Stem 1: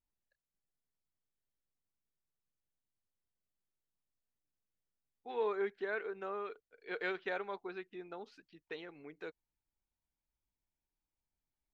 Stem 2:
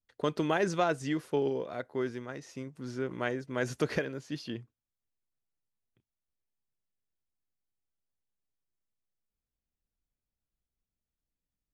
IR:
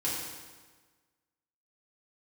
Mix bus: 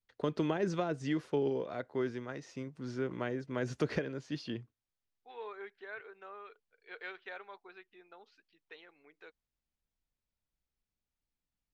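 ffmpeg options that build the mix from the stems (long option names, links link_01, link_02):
-filter_complex "[0:a]highpass=frequency=880:poles=1,volume=-4dB[link_01];[1:a]acrossover=split=450[link_02][link_03];[link_03]acompressor=threshold=-35dB:ratio=6[link_04];[link_02][link_04]amix=inputs=2:normalize=0,volume=-1dB[link_05];[link_01][link_05]amix=inputs=2:normalize=0,lowpass=6000"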